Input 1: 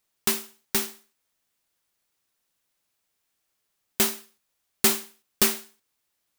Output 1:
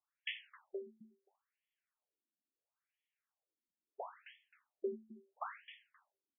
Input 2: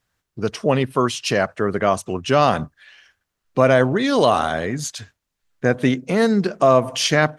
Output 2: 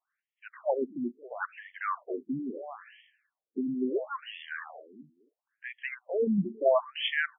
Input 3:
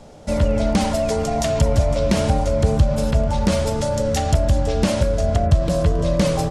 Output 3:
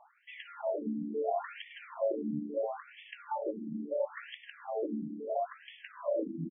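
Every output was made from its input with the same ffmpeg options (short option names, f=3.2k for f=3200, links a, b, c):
-af "aecho=1:1:264|528:0.141|0.0353,afftfilt=real='re*between(b*sr/1024,240*pow(2500/240,0.5+0.5*sin(2*PI*0.74*pts/sr))/1.41,240*pow(2500/240,0.5+0.5*sin(2*PI*0.74*pts/sr))*1.41)':imag='im*between(b*sr/1024,240*pow(2500/240,0.5+0.5*sin(2*PI*0.74*pts/sr))/1.41,240*pow(2500/240,0.5+0.5*sin(2*PI*0.74*pts/sr))*1.41)':win_size=1024:overlap=0.75,volume=-7dB"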